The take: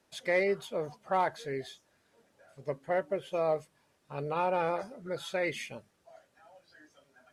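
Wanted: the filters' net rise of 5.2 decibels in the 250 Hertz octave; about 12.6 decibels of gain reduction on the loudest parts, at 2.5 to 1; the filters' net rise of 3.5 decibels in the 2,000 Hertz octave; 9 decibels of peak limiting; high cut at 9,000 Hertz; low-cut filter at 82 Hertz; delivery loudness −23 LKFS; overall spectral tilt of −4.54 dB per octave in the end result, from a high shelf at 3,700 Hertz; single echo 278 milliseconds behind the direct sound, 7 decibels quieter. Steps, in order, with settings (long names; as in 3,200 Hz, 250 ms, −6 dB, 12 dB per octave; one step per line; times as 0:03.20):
high-pass filter 82 Hz
low-pass filter 9,000 Hz
parametric band 250 Hz +9 dB
parametric band 2,000 Hz +3 dB
high-shelf EQ 3,700 Hz +3 dB
downward compressor 2.5 to 1, threshold −41 dBFS
brickwall limiter −33 dBFS
single-tap delay 278 ms −7 dB
level +21.5 dB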